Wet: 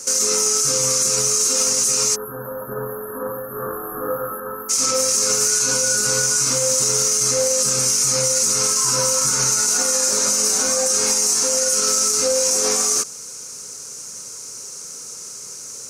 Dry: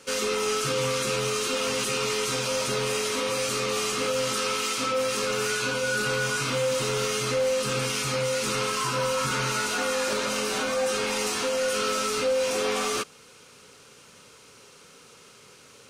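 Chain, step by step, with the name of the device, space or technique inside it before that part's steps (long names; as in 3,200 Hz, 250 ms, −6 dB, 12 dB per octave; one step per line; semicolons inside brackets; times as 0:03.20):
over-bright horn tweeter (high shelf with overshoot 4,500 Hz +12 dB, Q 3; brickwall limiter −14.5 dBFS, peak gain reduction 11 dB)
0:02.15–0:04.70: time-frequency box erased 1,800–11,000 Hz
0:03.52–0:04.40: flutter between parallel walls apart 3.7 metres, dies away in 0.53 s
level +5.5 dB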